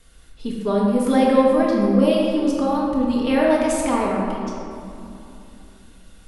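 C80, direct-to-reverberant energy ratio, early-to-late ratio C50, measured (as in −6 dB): 1.0 dB, −4.0 dB, −0.5 dB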